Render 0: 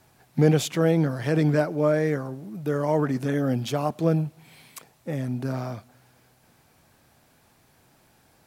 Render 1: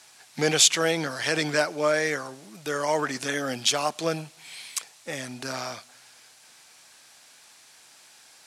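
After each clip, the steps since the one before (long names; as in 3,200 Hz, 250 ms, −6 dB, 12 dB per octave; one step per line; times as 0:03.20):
meter weighting curve ITU-R 468
level +3 dB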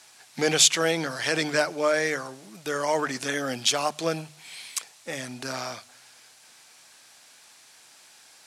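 mains-hum notches 50/100/150 Hz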